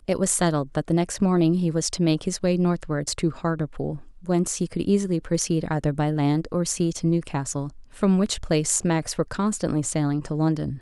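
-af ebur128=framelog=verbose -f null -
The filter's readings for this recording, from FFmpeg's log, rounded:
Integrated loudness:
  I:         -24.0 LUFS
  Threshold: -34.1 LUFS
Loudness range:
  LRA:         1.9 LU
  Threshold: -44.3 LUFS
  LRA low:   -25.2 LUFS
  LRA high:  -23.3 LUFS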